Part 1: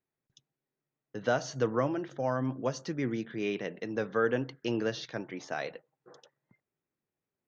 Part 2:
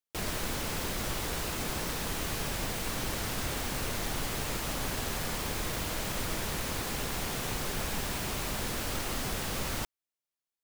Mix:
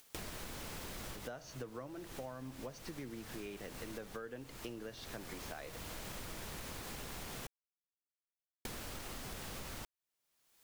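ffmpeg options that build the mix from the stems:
ffmpeg -i stem1.wav -i stem2.wav -filter_complex "[0:a]volume=-2.5dB,asplit=2[link_01][link_02];[1:a]acompressor=mode=upward:threshold=-42dB:ratio=2.5,volume=0dB,asplit=3[link_03][link_04][link_05];[link_03]atrim=end=7.47,asetpts=PTS-STARTPTS,afade=type=out:start_time=7.466:duration=0.004:curve=hsin[link_06];[link_04]atrim=start=7.47:end=8.65,asetpts=PTS-STARTPTS,volume=0[link_07];[link_05]atrim=start=8.65,asetpts=PTS-STARTPTS,afade=type=in:duration=0.004:curve=hsin[link_08];[link_06][link_07][link_08]concat=n=3:v=0:a=1[link_09];[link_02]apad=whole_len=469205[link_10];[link_09][link_10]sidechaincompress=threshold=-40dB:ratio=6:attack=11:release=1080[link_11];[link_01][link_11]amix=inputs=2:normalize=0,acompressor=threshold=-42dB:ratio=12" out.wav

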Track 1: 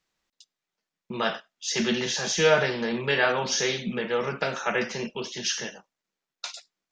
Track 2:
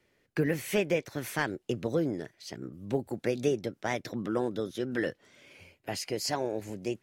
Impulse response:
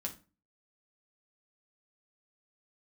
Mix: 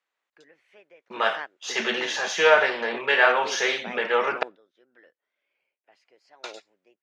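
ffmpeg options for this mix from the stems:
-filter_complex "[0:a]aeval=exprs='if(lt(val(0),0),0.708*val(0),val(0))':channel_layout=same,dynaudnorm=framelen=260:gausssize=9:maxgain=11.5dB,aexciter=amount=2.9:drive=7.1:freq=7000,volume=0.5dB,asplit=3[link_01][link_02][link_03];[link_01]atrim=end=4.43,asetpts=PTS-STARTPTS,afade=type=out:start_time=4.426:duration=0.004:curve=hsin[link_04];[link_02]atrim=start=4.43:end=5.92,asetpts=PTS-STARTPTS,volume=0[link_05];[link_03]atrim=start=5.92,asetpts=PTS-STARTPTS,afade=type=in:duration=0.004:curve=hsin[link_06];[link_04][link_05][link_06]concat=n=3:v=0:a=1,asplit=3[link_07][link_08][link_09];[link_08]volume=-24dB[link_10];[1:a]volume=-3.5dB[link_11];[link_09]apad=whole_len=309925[link_12];[link_11][link_12]sidechaingate=range=-17dB:threshold=-36dB:ratio=16:detection=peak[link_13];[2:a]atrim=start_sample=2205[link_14];[link_10][link_14]afir=irnorm=-1:irlink=0[link_15];[link_07][link_13][link_15]amix=inputs=3:normalize=0,highpass=610,lowpass=2700"

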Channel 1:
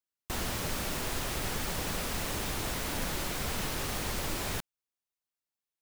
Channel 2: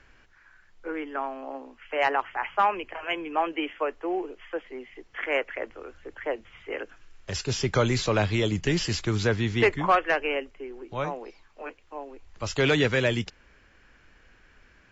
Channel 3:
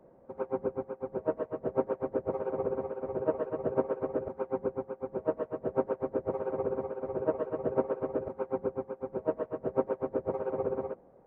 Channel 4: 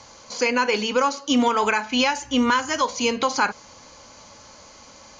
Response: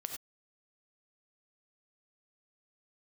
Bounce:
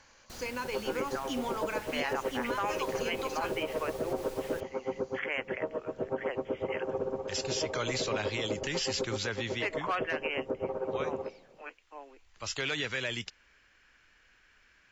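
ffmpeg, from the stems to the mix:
-filter_complex "[0:a]volume=-14dB[link_01];[1:a]tiltshelf=frequency=970:gain=-6.5,volume=-7dB[link_02];[2:a]adelay=350,volume=-2.5dB,asplit=2[link_03][link_04];[link_04]volume=-13dB[link_05];[3:a]volume=-16dB[link_06];[4:a]atrim=start_sample=2205[link_07];[link_05][link_07]afir=irnorm=-1:irlink=0[link_08];[link_01][link_02][link_03][link_06][link_08]amix=inputs=5:normalize=0,alimiter=limit=-22dB:level=0:latency=1:release=63"

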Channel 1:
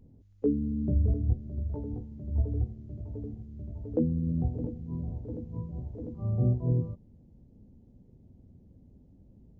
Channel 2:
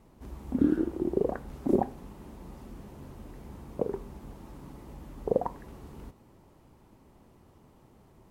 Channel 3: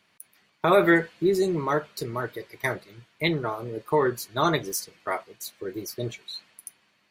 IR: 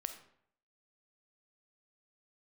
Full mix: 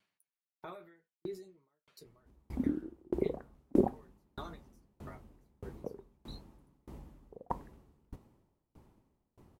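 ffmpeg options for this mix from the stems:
-filter_complex "[1:a]lowshelf=frequency=440:gain=4,adelay=2050,volume=-2dB[link_01];[2:a]alimiter=limit=-19dB:level=0:latency=1:release=74,flanger=delay=9.5:depth=9.9:regen=-28:speed=0.45:shape=triangular,aeval=exprs='val(0)*pow(10,-23*if(lt(mod(1.6*n/s,1),2*abs(1.6)/1000),1-mod(1.6*n/s,1)/(2*abs(1.6)/1000),(mod(1.6*n/s,1)-2*abs(1.6)/1000)/(1-2*abs(1.6)/1000))/20)':channel_layout=same,volume=-7.5dB[link_02];[link_01][link_02]amix=inputs=2:normalize=0,aeval=exprs='val(0)*pow(10,-31*if(lt(mod(1.6*n/s,1),2*abs(1.6)/1000),1-mod(1.6*n/s,1)/(2*abs(1.6)/1000),(mod(1.6*n/s,1)-2*abs(1.6)/1000)/(1-2*abs(1.6)/1000))/20)':channel_layout=same"

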